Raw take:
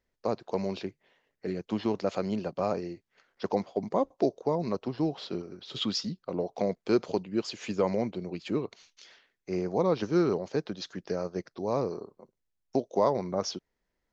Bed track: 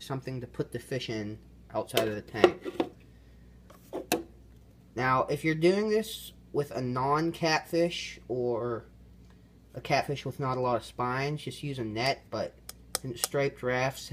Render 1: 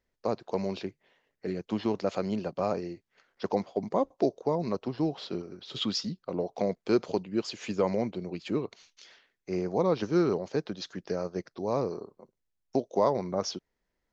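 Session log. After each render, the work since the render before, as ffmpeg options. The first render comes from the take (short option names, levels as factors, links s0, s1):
-af anull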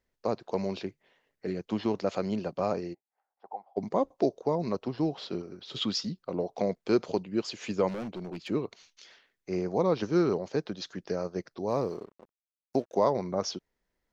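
-filter_complex "[0:a]asplit=3[s0][s1][s2];[s0]afade=t=out:st=2.93:d=0.02[s3];[s1]bandpass=f=800:t=q:w=10,afade=t=in:st=2.93:d=0.02,afade=t=out:st=3.76:d=0.02[s4];[s2]afade=t=in:st=3.76:d=0.02[s5];[s3][s4][s5]amix=inputs=3:normalize=0,asettb=1/sr,asplit=3[s6][s7][s8];[s6]atrim=end=7.884[s9];[s7]atrim=start=7.88:end=8.48,asetpts=PTS-STARTPTS,afade=t=in:d=0.004:c=qsin,afade=t=out:st=0.596:d=0.004:c=qsin,volume=44.7,asoftclip=hard,volume=0.0224[s10];[s8]atrim=start=8.476[s11];[s9][s10]acrossfade=d=0.004:c1=hsin:c2=qsin[s12];[s12][s11]acrossfade=d=0.004:c1=qsin:c2=hsin,asettb=1/sr,asplit=3[s13][s14][s15];[s13]atrim=end=11.694[s16];[s14]atrim=start=11.69:end=12.95,asetpts=PTS-STARTPTS,afade=t=in:d=0.004:c=qsin,afade=t=out:st=1.256:d=0.004:c=qsin,aeval=exprs='sgn(val(0))*max(abs(val(0))-0.00133,0)':c=same[s17];[s15]atrim=start=12.946[s18];[s16][s17]acrossfade=d=0.004:c1=hsin:c2=qsin[s19];[s19][s18]acrossfade=d=0.004:c1=qsin:c2=hsin"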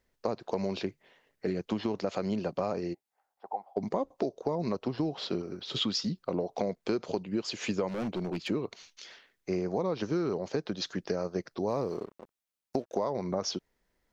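-filter_complex "[0:a]asplit=2[s0][s1];[s1]alimiter=limit=0.0891:level=0:latency=1,volume=0.75[s2];[s0][s2]amix=inputs=2:normalize=0,acompressor=threshold=0.0447:ratio=6"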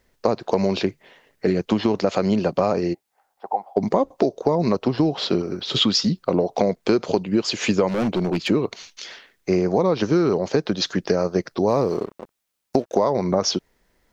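-af "volume=3.76"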